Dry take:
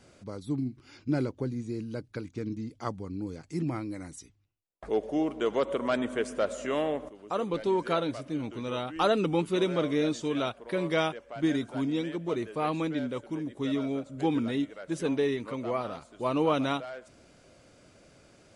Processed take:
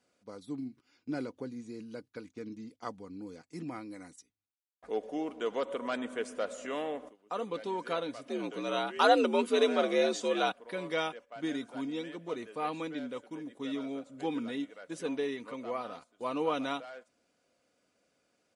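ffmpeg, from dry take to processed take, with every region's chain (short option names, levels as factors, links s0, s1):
-filter_complex "[0:a]asettb=1/sr,asplit=3[s0][s1][s2];[s0]atrim=end=8.284[s3];[s1]atrim=start=8.28:end=10.52,asetpts=PTS-STARTPTS,afade=t=in:d=0.004:c=qsin,afade=t=out:st=2.236:d=0.004:c=qsin,acontrast=59,afreqshift=68[s4];[s2]atrim=start=10.516[s5];[s3][s4]acrossfade=d=0.004:c1=hsin:c2=qsin[s6];[s6][s5]acrossfade=d=0.004:c1=qsin:c2=hsin,agate=range=0.282:threshold=0.00631:ratio=16:detection=peak,highpass=f=330:p=1,aecho=1:1:4.1:0.34,volume=0.596"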